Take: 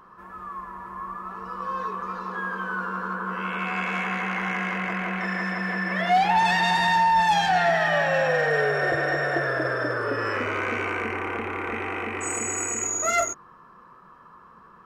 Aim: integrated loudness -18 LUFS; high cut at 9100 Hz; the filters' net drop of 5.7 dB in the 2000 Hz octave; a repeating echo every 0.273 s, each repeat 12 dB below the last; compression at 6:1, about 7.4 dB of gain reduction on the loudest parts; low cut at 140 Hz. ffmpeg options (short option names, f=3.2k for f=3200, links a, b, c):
-af "highpass=140,lowpass=9.1k,equalizer=f=2k:t=o:g=-7,acompressor=threshold=-26dB:ratio=6,aecho=1:1:273|546|819:0.251|0.0628|0.0157,volume=12.5dB"